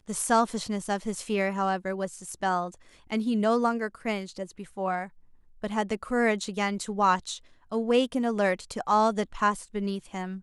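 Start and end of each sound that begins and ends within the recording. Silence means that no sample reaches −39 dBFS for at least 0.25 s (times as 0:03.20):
0:03.11–0:05.07
0:05.63–0:07.38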